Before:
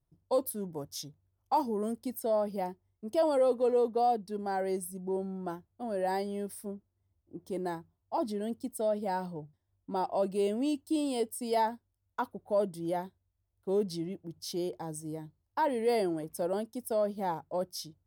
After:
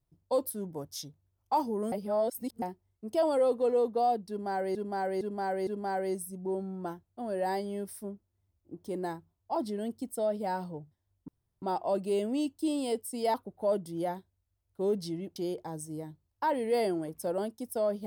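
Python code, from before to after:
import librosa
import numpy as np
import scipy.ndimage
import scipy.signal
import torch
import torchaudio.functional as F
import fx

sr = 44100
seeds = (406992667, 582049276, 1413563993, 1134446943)

y = fx.edit(x, sr, fx.reverse_span(start_s=1.92, length_s=0.7),
    fx.repeat(start_s=4.29, length_s=0.46, count=4),
    fx.insert_room_tone(at_s=9.9, length_s=0.34),
    fx.cut(start_s=11.62, length_s=0.6),
    fx.cut(start_s=14.24, length_s=0.27), tone=tone)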